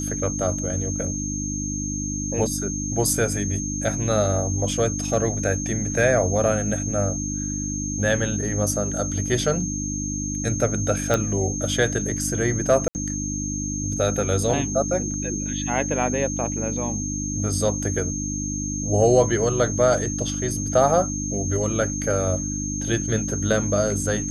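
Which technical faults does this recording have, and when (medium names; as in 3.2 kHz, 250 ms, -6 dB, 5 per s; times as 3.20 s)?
hum 50 Hz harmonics 6 -29 dBFS
whine 6.4 kHz -29 dBFS
11.14 s: pop -7 dBFS
12.88–12.95 s: dropout 69 ms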